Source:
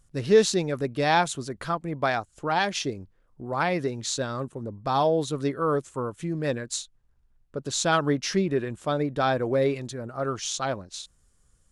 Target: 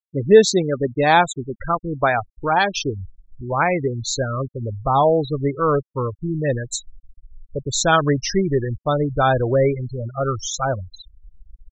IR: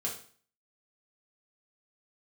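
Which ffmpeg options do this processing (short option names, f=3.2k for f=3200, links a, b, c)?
-af "asubboost=boost=8:cutoff=73,afftfilt=real='re*gte(hypot(re,im),0.0562)':imag='im*gte(hypot(re,im),0.0562)':win_size=1024:overlap=0.75,volume=7.5dB"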